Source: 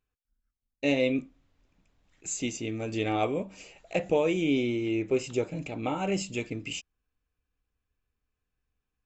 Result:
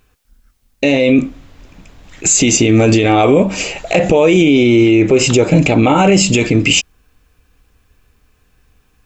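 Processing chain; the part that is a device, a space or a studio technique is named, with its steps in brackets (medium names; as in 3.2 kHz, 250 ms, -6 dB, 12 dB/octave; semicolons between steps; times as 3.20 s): loud club master (compression 2.5:1, threshold -27 dBFS, peak gain reduction 5.5 dB; hard clipper -17.5 dBFS, distortion -45 dB; loudness maximiser +29 dB); trim -1 dB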